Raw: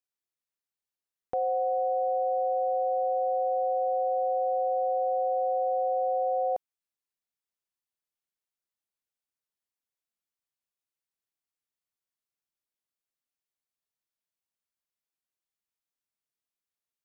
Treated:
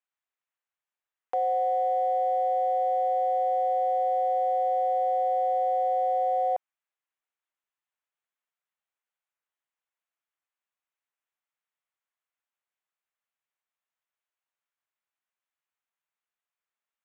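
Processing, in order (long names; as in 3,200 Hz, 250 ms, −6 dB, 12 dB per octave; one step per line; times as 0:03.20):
adaptive Wiener filter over 9 samples
high-pass filter 800 Hz 12 dB per octave
level +7.5 dB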